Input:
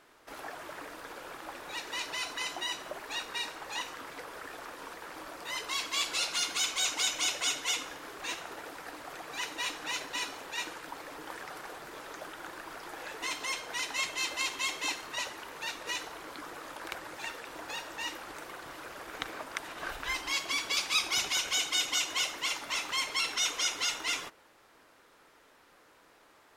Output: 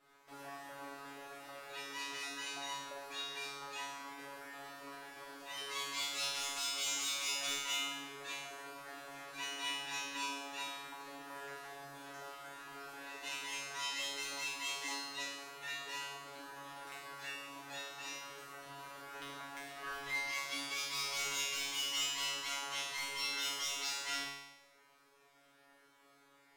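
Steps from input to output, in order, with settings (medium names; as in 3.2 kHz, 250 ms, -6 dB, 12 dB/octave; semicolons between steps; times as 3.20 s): overload inside the chain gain 26 dB; feedback comb 140 Hz, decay 0.96 s, harmonics all, mix 100%; trim +10.5 dB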